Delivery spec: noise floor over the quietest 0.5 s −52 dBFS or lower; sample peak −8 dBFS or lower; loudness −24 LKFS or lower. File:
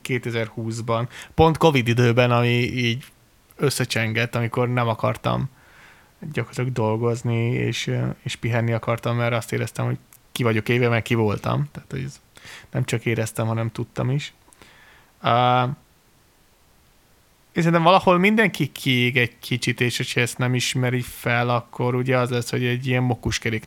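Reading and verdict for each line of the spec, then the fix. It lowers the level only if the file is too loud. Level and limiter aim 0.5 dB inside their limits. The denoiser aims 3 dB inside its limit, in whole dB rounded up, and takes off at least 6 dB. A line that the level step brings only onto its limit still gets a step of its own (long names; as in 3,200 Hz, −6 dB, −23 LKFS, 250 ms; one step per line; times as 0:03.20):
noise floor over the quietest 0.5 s −57 dBFS: in spec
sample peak −2.0 dBFS: out of spec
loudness −22.0 LKFS: out of spec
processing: level −2.5 dB
brickwall limiter −8.5 dBFS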